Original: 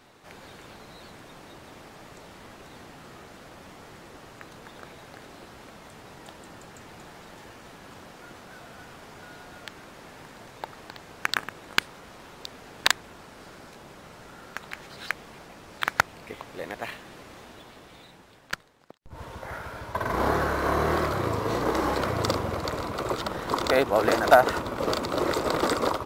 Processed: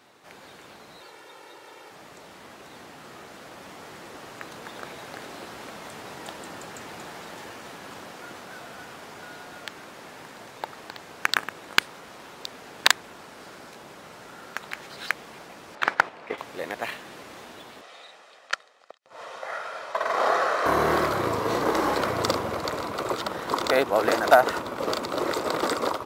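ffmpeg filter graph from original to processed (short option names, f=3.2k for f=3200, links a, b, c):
-filter_complex "[0:a]asettb=1/sr,asplit=3[a][b][c];[a]atrim=end=1.014[d];[b]atrim=start=1.01:end=1.91,asetpts=PTS-STARTPTS,afade=t=in:d=0.004:c=qsin,afade=t=out:st=0.896:d=0.004:c=qsin,highpass=100,bass=f=250:g=-10,treble=f=4k:g=-2,aecho=1:1:2.2:0.64,atrim=end_sample=39690[e];[c]atrim=start=1.906[f];[d][e]acrossfade=d=0.004:c1=hsin:c2=qsin[g];[g][f]acrossfade=d=0.004:c1=qsin:c2=hsin,asettb=1/sr,asplit=3[h][i][j];[h]atrim=end=15.754[k];[i]atrim=start=15.75:end=16.38,asetpts=PTS-STARTPTS,afade=t=in:d=0.004:c=qsin,afade=t=out:st=0.626:d=0.004:c=qsin,agate=range=-7dB:threshold=-43dB:ratio=16:release=100:detection=peak,highshelf=f=9.8k:g=-7.5,asplit=2[l][m];[m]highpass=f=720:p=1,volume=17dB,asoftclip=type=tanh:threshold=-5dB[n];[l][n]amix=inputs=2:normalize=0,lowpass=f=1.2k:p=1,volume=-6dB[o];[j]atrim=start=16.376[p];[k][o]acrossfade=d=0.004:c1=hsin:c2=qsin[q];[q][p]acrossfade=d=0.004:c1=qsin:c2=hsin,asettb=1/sr,asplit=3[r][s][t];[r]atrim=end=17.814[u];[s]atrim=start=17.81:end=20.66,asetpts=PTS-STARTPTS,afade=t=in:d=0.004:c=qsin,afade=t=out:st=2.846:d=0.004:c=qsin,highpass=490,lowpass=7.5k,aecho=1:1:1.6:0.42,atrim=end_sample=125685[v];[t]atrim=start=20.656[w];[u][v]acrossfade=d=0.004:c1=hsin:c2=qsin[x];[x][w]acrossfade=d=0.004:c1=qsin:c2=hsin,highpass=f=240:p=1,dynaudnorm=f=740:g=11:m=8.5dB"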